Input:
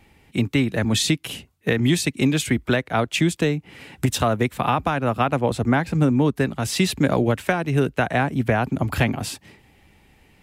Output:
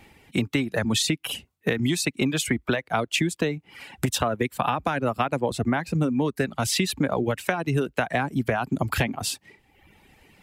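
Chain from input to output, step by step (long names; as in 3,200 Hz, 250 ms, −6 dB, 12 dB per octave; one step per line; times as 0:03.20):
low-shelf EQ 130 Hz −6 dB
in parallel at −2 dB: speech leveller within 3 dB 0.5 s
on the sum: reverb reduction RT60 0.92 s
downward compressor, threshold −18 dBFS, peak gain reduction 8.5 dB
level −2 dB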